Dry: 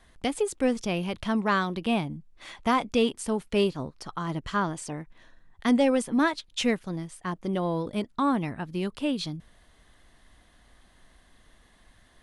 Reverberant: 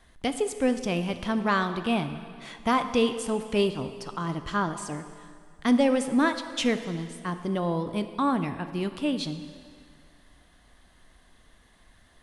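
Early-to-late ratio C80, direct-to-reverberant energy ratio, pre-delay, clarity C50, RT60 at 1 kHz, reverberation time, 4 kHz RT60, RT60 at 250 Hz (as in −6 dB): 11.0 dB, 9.0 dB, 5 ms, 10.0 dB, 2.0 s, 2.1 s, 1.9 s, 2.2 s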